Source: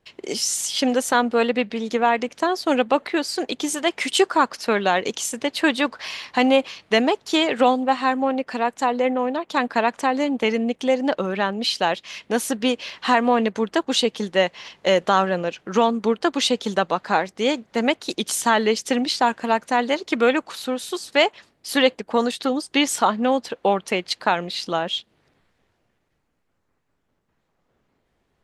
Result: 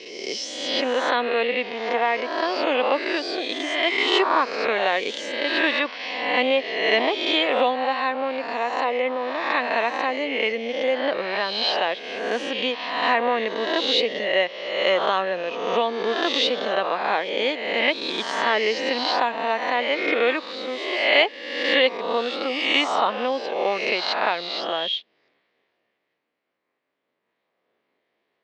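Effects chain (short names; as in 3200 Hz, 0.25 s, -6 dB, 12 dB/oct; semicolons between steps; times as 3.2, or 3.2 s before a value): spectral swells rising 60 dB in 1.13 s; speaker cabinet 400–4400 Hz, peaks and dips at 850 Hz -5 dB, 1400 Hz -6 dB, 2100 Hz +3 dB; gain -2.5 dB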